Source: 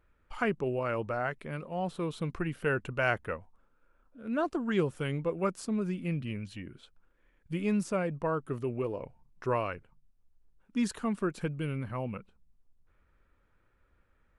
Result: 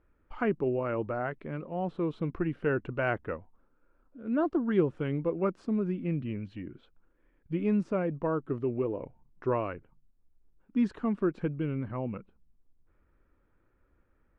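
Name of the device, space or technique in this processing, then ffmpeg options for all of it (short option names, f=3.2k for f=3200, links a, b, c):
phone in a pocket: -filter_complex "[0:a]asettb=1/sr,asplit=3[a][b][c];[a]atrim=end=4.374[d];[b]atrim=start=4.37:end=4.78,asetpts=PTS-STARTPTS,afade=t=in:d=0.004:c=qsin,afade=t=out:st=0.406:d=0.004:c=qsin,bandreject=f=2.5k:w=10[e];[c]atrim=start=4.776[f];[d][e]acrossfade=d=0.004:c1=hsin:c2=qsin[g];[g][f]acrossfade=d=0.004:c1=qsin:c2=hsin,lowpass=3.7k,equalizer=f=310:t=o:w=0.78:g=6,highshelf=f=2.4k:g=-10"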